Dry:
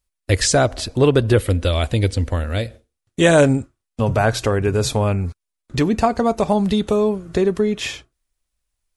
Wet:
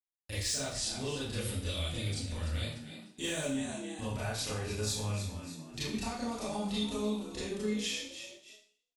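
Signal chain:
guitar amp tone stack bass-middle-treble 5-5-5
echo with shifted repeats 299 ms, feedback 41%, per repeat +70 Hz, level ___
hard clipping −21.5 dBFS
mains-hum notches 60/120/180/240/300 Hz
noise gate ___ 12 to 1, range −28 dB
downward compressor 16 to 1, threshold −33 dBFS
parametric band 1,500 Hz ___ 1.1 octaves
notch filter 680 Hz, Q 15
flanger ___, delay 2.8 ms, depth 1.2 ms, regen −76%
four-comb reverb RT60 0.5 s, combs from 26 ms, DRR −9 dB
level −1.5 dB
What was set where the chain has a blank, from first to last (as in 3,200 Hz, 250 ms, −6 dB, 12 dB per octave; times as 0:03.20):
−13 dB, −54 dBFS, −6.5 dB, 1.9 Hz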